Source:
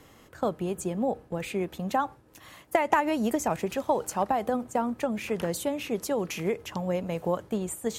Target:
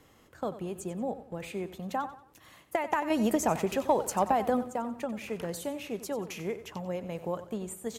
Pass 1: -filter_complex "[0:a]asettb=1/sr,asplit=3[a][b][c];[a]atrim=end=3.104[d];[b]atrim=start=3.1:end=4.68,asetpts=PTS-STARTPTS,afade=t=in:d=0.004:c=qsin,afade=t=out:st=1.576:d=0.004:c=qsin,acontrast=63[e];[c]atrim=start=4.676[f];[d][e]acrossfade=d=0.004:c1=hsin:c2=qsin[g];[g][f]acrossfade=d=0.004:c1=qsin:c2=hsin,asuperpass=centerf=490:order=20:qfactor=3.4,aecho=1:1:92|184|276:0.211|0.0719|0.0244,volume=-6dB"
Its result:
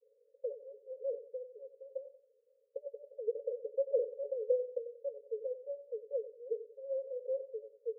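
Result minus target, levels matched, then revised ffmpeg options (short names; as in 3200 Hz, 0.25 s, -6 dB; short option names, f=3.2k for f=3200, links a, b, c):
500 Hz band +4.0 dB
-filter_complex "[0:a]asettb=1/sr,asplit=3[a][b][c];[a]atrim=end=3.104[d];[b]atrim=start=3.1:end=4.68,asetpts=PTS-STARTPTS,afade=t=in:d=0.004:c=qsin,afade=t=out:st=1.576:d=0.004:c=qsin,acontrast=63[e];[c]atrim=start=4.676[f];[d][e]acrossfade=d=0.004:c1=hsin:c2=qsin[g];[g][f]acrossfade=d=0.004:c1=qsin:c2=hsin,aecho=1:1:92|184|276:0.211|0.0719|0.0244,volume=-6dB"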